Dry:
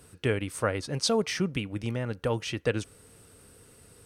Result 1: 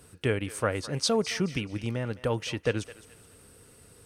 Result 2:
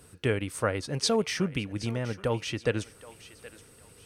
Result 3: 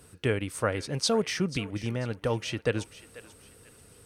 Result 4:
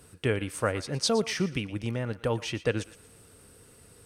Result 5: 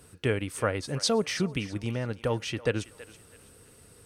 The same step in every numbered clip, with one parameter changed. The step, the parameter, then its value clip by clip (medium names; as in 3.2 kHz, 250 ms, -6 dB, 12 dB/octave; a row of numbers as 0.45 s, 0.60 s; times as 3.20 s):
thinning echo, time: 213 ms, 773 ms, 489 ms, 117 ms, 327 ms